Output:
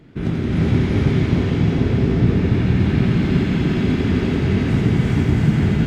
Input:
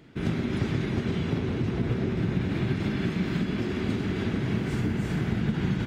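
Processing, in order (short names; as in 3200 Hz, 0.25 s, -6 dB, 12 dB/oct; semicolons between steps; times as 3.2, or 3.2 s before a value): tilt -1.5 dB/oct; thin delay 87 ms, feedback 84%, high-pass 2200 Hz, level -5 dB; non-linear reverb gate 0.46 s rising, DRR -3 dB; gain +2.5 dB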